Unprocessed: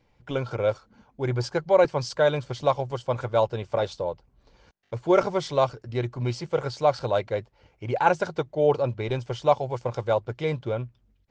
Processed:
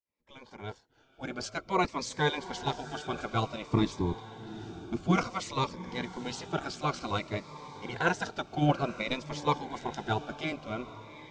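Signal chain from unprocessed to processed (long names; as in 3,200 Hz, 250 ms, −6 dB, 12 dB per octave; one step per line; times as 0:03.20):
fade in at the beginning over 1.78 s
gate on every frequency bin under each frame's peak −10 dB weak
0:03.70–0:05.16: low shelf with overshoot 410 Hz +8 dB, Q 3
0:08.48–0:09.18: transient designer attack +8 dB, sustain −2 dB
feedback delay with all-pass diffusion 801 ms, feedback 44%, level −14 dB
phaser whose notches keep moving one way falling 0.55 Hz
level +2.5 dB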